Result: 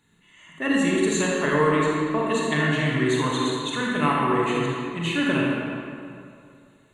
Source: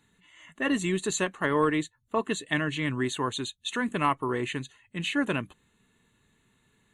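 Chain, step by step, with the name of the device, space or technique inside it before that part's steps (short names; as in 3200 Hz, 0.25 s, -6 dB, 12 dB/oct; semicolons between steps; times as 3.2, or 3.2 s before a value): stairwell (reverb RT60 2.5 s, pre-delay 32 ms, DRR -4 dB)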